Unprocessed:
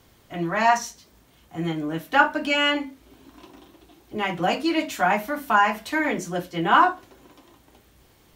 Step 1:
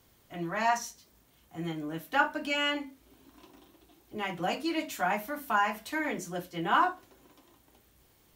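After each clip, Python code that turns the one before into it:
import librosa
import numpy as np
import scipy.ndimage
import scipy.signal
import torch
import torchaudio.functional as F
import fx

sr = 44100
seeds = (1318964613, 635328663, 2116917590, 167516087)

y = fx.high_shelf(x, sr, hz=8400.0, db=8.0)
y = y * 10.0 ** (-8.5 / 20.0)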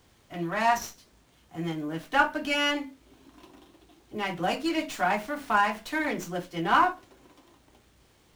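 y = fx.running_max(x, sr, window=3)
y = y * 10.0 ** (3.5 / 20.0)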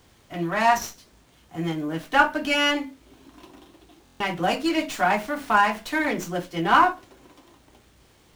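y = fx.buffer_glitch(x, sr, at_s=(4.04,), block=1024, repeats=6)
y = y * 10.0 ** (4.5 / 20.0)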